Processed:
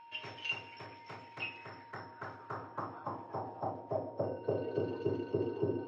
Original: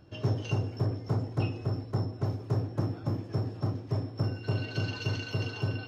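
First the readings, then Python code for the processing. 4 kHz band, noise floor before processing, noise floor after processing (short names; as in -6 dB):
-4.5 dB, -43 dBFS, -54 dBFS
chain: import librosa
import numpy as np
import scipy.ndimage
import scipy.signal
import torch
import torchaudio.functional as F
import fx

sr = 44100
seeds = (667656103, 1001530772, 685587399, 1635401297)

y = fx.filter_sweep_bandpass(x, sr, from_hz=2400.0, to_hz=380.0, start_s=1.33, end_s=5.09, q=3.6)
y = y + 10.0 ** (-62.0 / 20.0) * np.sin(2.0 * np.pi * 930.0 * np.arange(len(y)) / sr)
y = y * librosa.db_to_amplitude(9.5)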